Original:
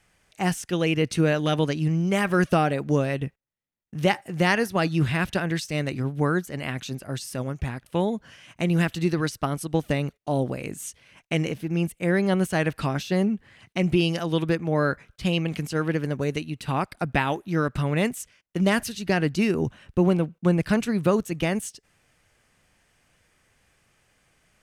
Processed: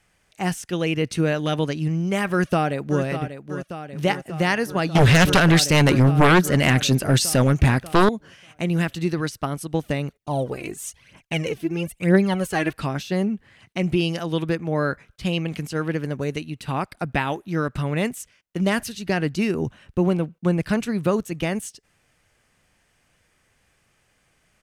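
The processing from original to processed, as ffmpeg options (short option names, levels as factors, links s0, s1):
-filter_complex "[0:a]asplit=2[s0][s1];[s1]afade=t=in:st=2.31:d=0.01,afade=t=out:st=3.03:d=0.01,aecho=0:1:590|1180|1770|2360|2950|3540|4130|4720|5310|5900:0.316228|0.221359|0.154952|0.108466|0.0759263|0.0531484|0.0372039|0.0260427|0.0182299|0.0127609[s2];[s0][s2]amix=inputs=2:normalize=0,asettb=1/sr,asplit=3[s3][s4][s5];[s3]atrim=end=4.954[s6];[s4]atrim=start=4.95:end=8.09,asetpts=PTS-STARTPTS,afade=t=in:d=0.004:c=qsin,afade=t=out:st=3.136:d=0.004:c=qsin,aeval=exprs='0.316*sin(PI/2*3.55*val(0)/0.316)':c=same[s7];[s5]atrim=start=8.086[s8];[s6][s7]acrossfade=d=0.004:c1=hsin:c2=qsin[s9];[s9][s8]acrossfade=d=0.004:c1=qsin:c2=hsin,asettb=1/sr,asplit=3[s10][s11][s12];[s10]atrim=end=10.154[s13];[s11]atrim=start=10.15:end=12.73,asetpts=PTS-STARTPTS,afade=t=in:d=0.004:c=qsin,afade=t=out:st=2.576:d=0.004:c=qsin,aphaser=in_gain=1:out_gain=1:delay=3.1:decay=0.63:speed=1:type=triangular[s14];[s12]atrim=start=12.726[s15];[s13][s14]acrossfade=d=0.004:c1=hsin:c2=qsin[s16];[s16][s15]acrossfade=d=0.004:c1=qsin:c2=hsin"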